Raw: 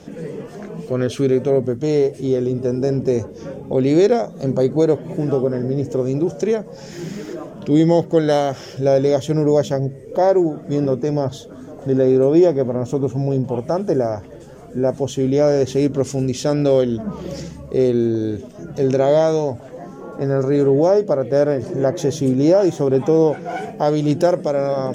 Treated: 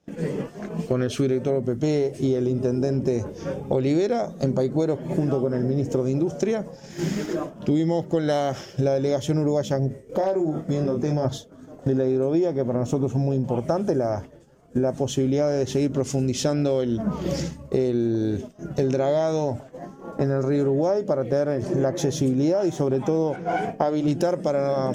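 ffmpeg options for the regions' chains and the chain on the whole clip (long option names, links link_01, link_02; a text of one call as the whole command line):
ffmpeg -i in.wav -filter_complex "[0:a]asettb=1/sr,asplit=3[link_01][link_02][link_03];[link_01]atrim=end=3.264[link_04];[link_02]atrim=start=3.26:end=3.87,asetpts=PTS-STARTPTS,afade=type=in:duration=0.004:curve=qsin,afade=type=out:start_time=0.606:duration=0.004:curve=qsin,equalizer=frequency=240:width_type=o:width=0.37:gain=-7.5,acompressor=mode=upward:threshold=-26dB:ratio=2.5:attack=3.2:release=140:knee=2.83:detection=peak[link_05];[link_03]atrim=start=3.866[link_06];[link_04][link_05]acrossfade=duration=0.004:curve1=hsin:curve2=qsin[link_07];[link_07][link_06]acrossfade=duration=0.004:curve1=qsin:curve2=hsin,asettb=1/sr,asplit=3[link_08][link_09][link_10];[link_08]atrim=end=9.884[link_11];[link_09]atrim=start=9.88:end=11.25,asetpts=PTS-STARTPTS,afade=type=in:duration=0.004:curve=qsin,afade=type=out:start_time=1.366:duration=0.004:curve=qsin,asplit=2[link_12][link_13];[link_13]adelay=26,volume=-5.5dB[link_14];[link_12][link_14]amix=inputs=2:normalize=0,atrim=end_sample=60417,acompressor=threshold=-23dB:ratio=3:attack=3.2:release=140:knee=1:detection=peak,asoftclip=type=hard:threshold=-15.5dB[link_15];[link_10]atrim=start=11.246[link_16];[link_11][link_15]acrossfade=duration=0.004:curve1=hsin:curve2=qsin[link_17];[link_17][link_16]acrossfade=duration=0.004:curve1=qsin:curve2=hsin,asettb=1/sr,asplit=3[link_18][link_19][link_20];[link_18]atrim=end=23.364[link_21];[link_19]atrim=start=23.36:end=24.08,asetpts=PTS-STARTPTS,afade=type=in:duration=0.004:curve=qsin,afade=type=out:start_time=0.716:duration=0.004:curve=qsin,highshelf=frequency=3500:gain=-9,bandreject=frequency=50:width_type=h:width=6,bandreject=frequency=100:width_type=h:width=6,bandreject=frequency=150:width_type=h:width=6,bandreject=frequency=200:width_type=h:width=6,bandreject=frequency=250:width_type=h:width=6[link_22];[link_20]atrim=start=24.076[link_23];[link_21][link_22]acrossfade=duration=0.004:curve1=hsin:curve2=qsin[link_24];[link_24][link_23]acrossfade=duration=0.004:curve1=qsin:curve2=hsin,agate=range=-33dB:threshold=-25dB:ratio=3:detection=peak,equalizer=frequency=450:width=5:gain=-4.5,acompressor=threshold=-27dB:ratio=6,volume=7dB" out.wav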